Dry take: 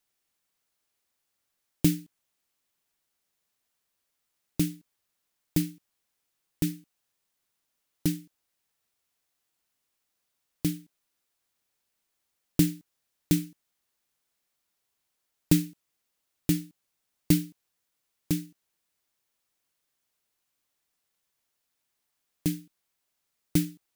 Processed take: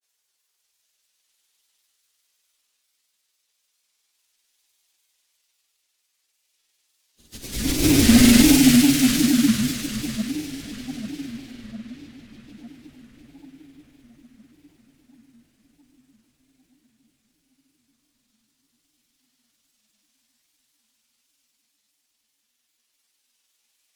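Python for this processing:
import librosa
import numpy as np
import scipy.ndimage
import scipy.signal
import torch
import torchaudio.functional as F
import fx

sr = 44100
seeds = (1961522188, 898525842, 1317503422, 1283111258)

y = fx.pitch_ramps(x, sr, semitones=-3.5, every_ms=1435)
y = fx.high_shelf(y, sr, hz=12000.0, db=-8.5)
y = fx.paulstretch(y, sr, seeds[0], factor=15.0, window_s=0.1, from_s=17.77)
y = fx.fold_sine(y, sr, drive_db=13, ceiling_db=-6.0)
y = fx.peak_eq(y, sr, hz=140.0, db=-15.0, octaves=1.2)
y = fx.echo_filtered(y, sr, ms=819, feedback_pct=70, hz=4900.0, wet_db=-12)
y = fx.granulator(y, sr, seeds[1], grain_ms=100.0, per_s=20.0, spray_ms=100.0, spread_st=3)
y = fx.band_widen(y, sr, depth_pct=40)
y = F.gain(torch.from_numpy(y), 3.5).numpy()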